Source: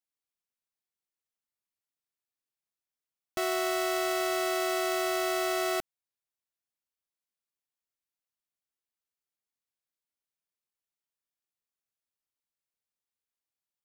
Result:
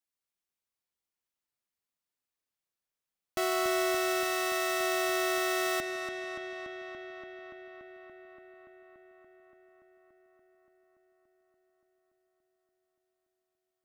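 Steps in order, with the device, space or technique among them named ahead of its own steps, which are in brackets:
dub delay into a spring reverb (feedback echo with a low-pass in the loop 287 ms, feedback 82%, low-pass 4,700 Hz, level −6 dB; spring reverb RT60 3.7 s, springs 32 ms, chirp 50 ms, DRR 12 dB)

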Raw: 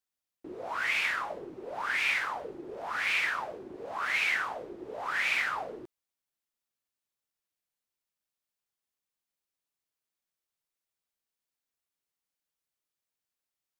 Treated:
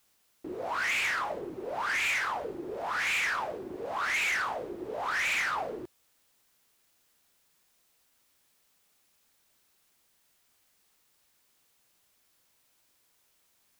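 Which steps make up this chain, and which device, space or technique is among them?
open-reel tape (soft clipping −30 dBFS, distortion −10 dB; parametric band 80 Hz +2.5 dB; white noise bed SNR 34 dB)
level +4.5 dB

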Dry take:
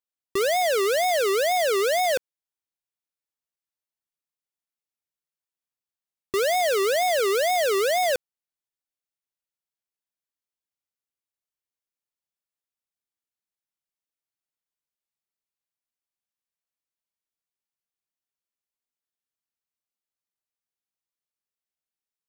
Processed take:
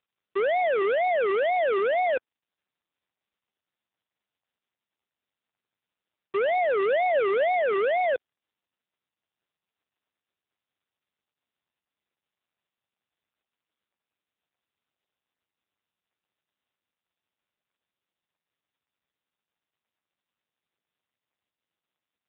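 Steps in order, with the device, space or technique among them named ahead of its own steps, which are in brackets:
0:06.77–0:07.52: dynamic equaliser 570 Hz, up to +3 dB, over −36 dBFS, Q 8
telephone (band-pass filter 300–3,200 Hz; AMR narrowband 6.7 kbit/s 8,000 Hz)

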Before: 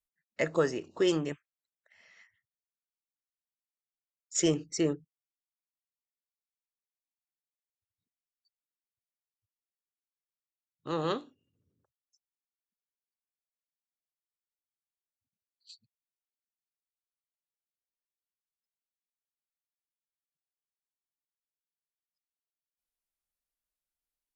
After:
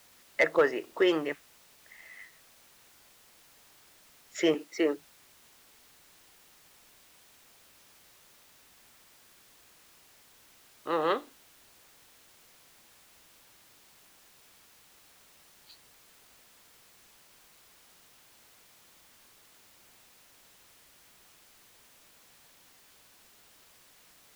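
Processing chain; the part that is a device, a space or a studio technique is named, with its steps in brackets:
drive-through speaker (band-pass filter 420–3,000 Hz; parametric band 2,000 Hz +7 dB 0.29 octaves; hard clipping −20.5 dBFS, distortion −22 dB; white noise bed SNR 18 dB)
0:04.54–0:04.96: high-pass filter 210 Hz 24 dB per octave
high-shelf EQ 5,600 Hz −5.5 dB
level +6 dB

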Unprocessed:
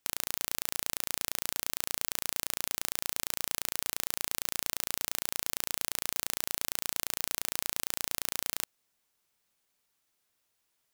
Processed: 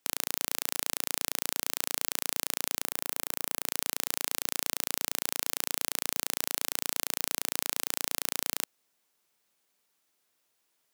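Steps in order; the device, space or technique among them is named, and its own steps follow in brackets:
0:02.84–0:03.66: parametric band 4,800 Hz −5.5 dB 2.3 octaves
filter by subtraction (in parallel: low-pass filter 310 Hz 12 dB per octave + polarity inversion)
on the sum: level +2 dB

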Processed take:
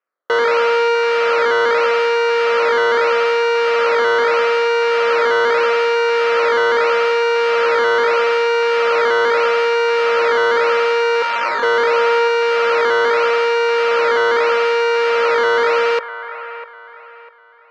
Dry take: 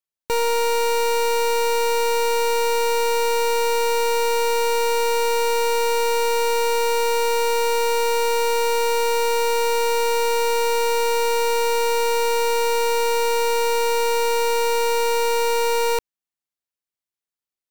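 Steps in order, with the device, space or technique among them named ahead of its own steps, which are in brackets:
0:11.22–0:11.63: Chebyshev high-pass filter 880 Hz, order 4
circuit-bent sampling toy (sample-and-hold swept by an LFO 10×, swing 160% 0.79 Hz; loudspeaker in its box 520–4,200 Hz, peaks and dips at 520 Hz +8 dB, 850 Hz −7 dB, 1,300 Hz +9 dB, 3,600 Hz −7 dB)
delay with a band-pass on its return 649 ms, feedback 33%, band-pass 1,200 Hz, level −10.5 dB
level +6 dB

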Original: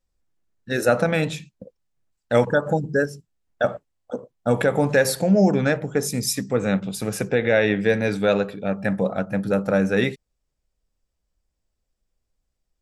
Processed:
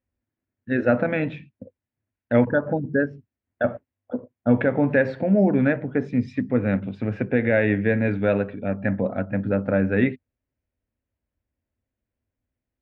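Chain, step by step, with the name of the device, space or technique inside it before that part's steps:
bass cabinet (loudspeaker in its box 74–2,400 Hz, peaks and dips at 98 Hz +9 dB, 170 Hz −8 dB, 250 Hz +8 dB, 450 Hz −4 dB, 810 Hz −5 dB, 1,200 Hz −7 dB)

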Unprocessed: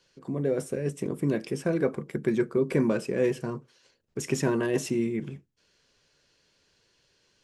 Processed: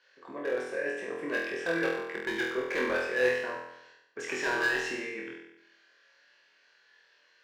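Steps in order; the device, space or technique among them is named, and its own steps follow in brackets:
megaphone (band-pass filter 630–3,500 Hz; parametric band 1,700 Hz +11 dB 0.34 octaves; hard clipping −27.5 dBFS, distortion −12 dB)
flutter between parallel walls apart 4.1 metres, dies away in 0.84 s

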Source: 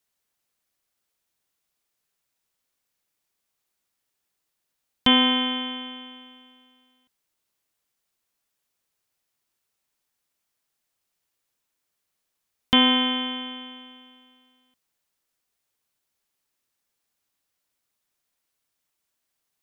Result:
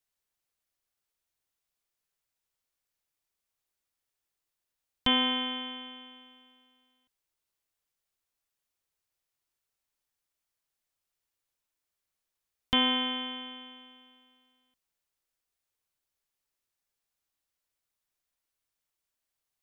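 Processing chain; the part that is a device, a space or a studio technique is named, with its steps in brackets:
low shelf boost with a cut just above (low-shelf EQ 72 Hz +8 dB; parametric band 210 Hz −4.5 dB 0.81 octaves)
level −7 dB

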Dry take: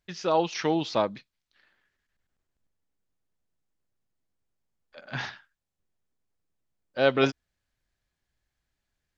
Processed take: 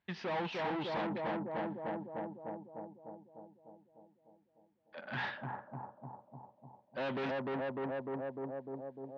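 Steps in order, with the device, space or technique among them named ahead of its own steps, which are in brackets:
analogue delay pedal into a guitar amplifier (bucket-brigade delay 300 ms, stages 2,048, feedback 65%, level −4 dB; tube saturation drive 36 dB, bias 0.25; loudspeaker in its box 100–3,700 Hz, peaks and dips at 210 Hz +6 dB, 890 Hz +8 dB, 1,800 Hz +4 dB)

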